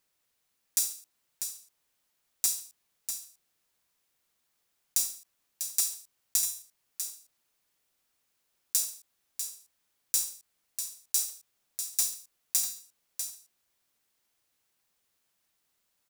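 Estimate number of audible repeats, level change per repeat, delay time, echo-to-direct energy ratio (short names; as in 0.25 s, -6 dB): 1, no steady repeat, 0.646 s, -8.0 dB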